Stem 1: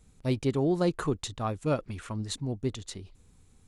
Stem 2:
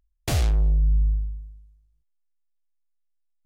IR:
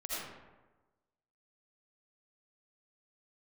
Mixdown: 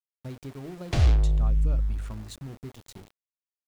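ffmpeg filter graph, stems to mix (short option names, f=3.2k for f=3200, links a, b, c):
-filter_complex "[0:a]lowshelf=f=350:g=7,acompressor=threshold=-28dB:ratio=10,volume=-6.5dB[a];[1:a]lowpass=5k,lowshelf=f=140:g=5.5,acrossover=split=190[b][c];[c]acompressor=threshold=-27dB:ratio=6[d];[b][d]amix=inputs=2:normalize=0,adelay=650,volume=-0.5dB[e];[a][e]amix=inputs=2:normalize=0,bandreject=f=50:t=h:w=6,bandreject=f=100:t=h:w=6,bandreject=f=150:t=h:w=6,bandreject=f=200:t=h:w=6,bandreject=f=250:t=h:w=6,bandreject=f=300:t=h:w=6,bandreject=f=350:t=h:w=6,bandreject=f=400:t=h:w=6,aeval=exprs='val(0)*gte(abs(val(0)),0.00631)':c=same"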